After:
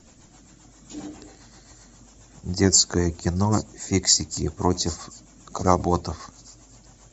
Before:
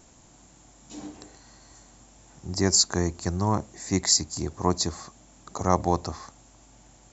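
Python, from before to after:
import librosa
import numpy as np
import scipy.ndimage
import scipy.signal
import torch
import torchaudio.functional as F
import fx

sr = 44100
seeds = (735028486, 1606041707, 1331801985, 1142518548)

y = fx.spec_quant(x, sr, step_db=15)
y = fx.rotary(y, sr, hz=7.5)
y = fx.echo_wet_highpass(y, sr, ms=791, feedback_pct=51, hz=5500.0, wet_db=-17.0)
y = y * librosa.db_to_amplitude(5.5)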